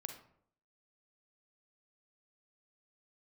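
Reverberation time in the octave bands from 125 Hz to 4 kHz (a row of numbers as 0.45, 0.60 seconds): 0.70, 0.70, 0.70, 0.60, 0.50, 0.35 seconds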